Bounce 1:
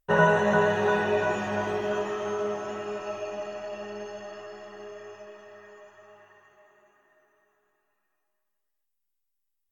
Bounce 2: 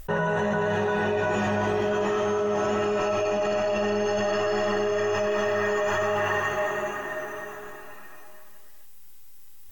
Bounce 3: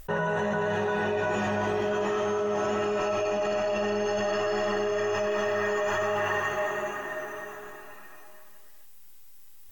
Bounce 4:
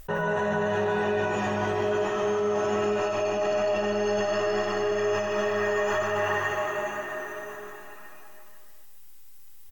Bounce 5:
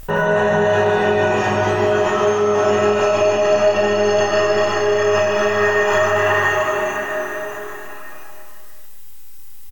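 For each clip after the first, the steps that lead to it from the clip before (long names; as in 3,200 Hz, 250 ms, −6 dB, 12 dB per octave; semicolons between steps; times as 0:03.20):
low-shelf EQ 170 Hz +6 dB; envelope flattener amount 100%; level −8.5 dB
low-shelf EQ 190 Hz −3 dB; level −2 dB
single-tap delay 149 ms −7 dB
double-tracking delay 32 ms −2 dB; level +8.5 dB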